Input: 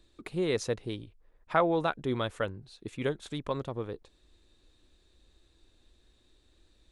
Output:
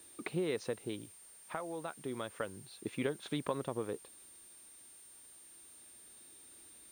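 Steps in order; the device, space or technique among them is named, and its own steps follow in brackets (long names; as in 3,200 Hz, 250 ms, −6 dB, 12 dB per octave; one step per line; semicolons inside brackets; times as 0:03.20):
medium wave at night (band-pass filter 160–3,900 Hz; downward compressor, threshold −34 dBFS, peak gain reduction 14 dB; amplitude tremolo 0.3 Hz, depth 56%; steady tone 9,000 Hz −58 dBFS; white noise bed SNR 22 dB)
level +3 dB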